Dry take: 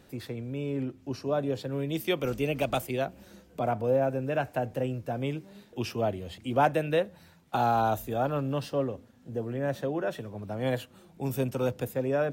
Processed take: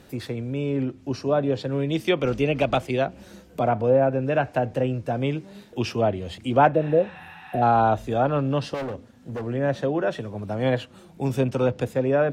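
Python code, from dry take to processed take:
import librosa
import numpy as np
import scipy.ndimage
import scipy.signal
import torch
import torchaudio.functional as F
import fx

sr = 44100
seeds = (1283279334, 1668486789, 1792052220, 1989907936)

y = fx.env_lowpass_down(x, sr, base_hz=2700.0, full_db=-22.0)
y = fx.spec_repair(y, sr, seeds[0], start_s=6.78, length_s=0.82, low_hz=750.0, high_hz=8800.0, source='before')
y = fx.clip_hard(y, sr, threshold_db=-34.0, at=(8.74, 9.47))
y = y * 10.0 ** (6.5 / 20.0)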